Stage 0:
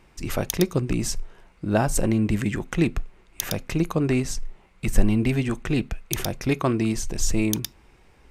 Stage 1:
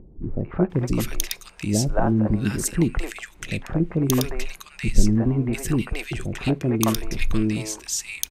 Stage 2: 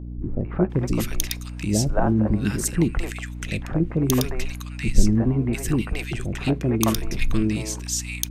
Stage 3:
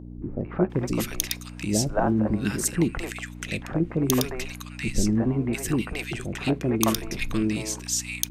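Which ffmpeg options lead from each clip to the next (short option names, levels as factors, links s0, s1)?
-filter_complex "[0:a]acrossover=split=480|1600[s0][s1][s2];[s1]adelay=220[s3];[s2]adelay=700[s4];[s0][s3][s4]amix=inputs=3:normalize=0,acompressor=mode=upward:threshold=0.01:ratio=2.5,volume=1.26"
-af "aeval=exprs='val(0)+0.0251*(sin(2*PI*60*n/s)+sin(2*PI*2*60*n/s)/2+sin(2*PI*3*60*n/s)/3+sin(2*PI*4*60*n/s)/4+sin(2*PI*5*60*n/s)/5)':c=same"
-af "lowshelf=f=110:g=-11.5"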